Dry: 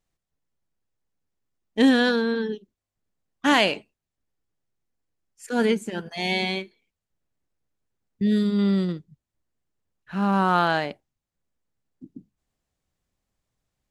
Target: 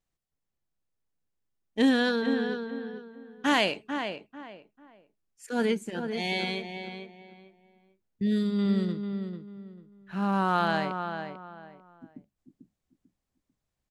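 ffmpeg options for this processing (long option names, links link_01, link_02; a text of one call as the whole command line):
ffmpeg -i in.wav -filter_complex "[0:a]asplit=2[link_01][link_02];[link_02]adelay=444,lowpass=frequency=2200:poles=1,volume=-7dB,asplit=2[link_03][link_04];[link_04]adelay=444,lowpass=frequency=2200:poles=1,volume=0.28,asplit=2[link_05][link_06];[link_06]adelay=444,lowpass=frequency=2200:poles=1,volume=0.28[link_07];[link_01][link_03][link_05][link_07]amix=inputs=4:normalize=0,volume=-5dB" out.wav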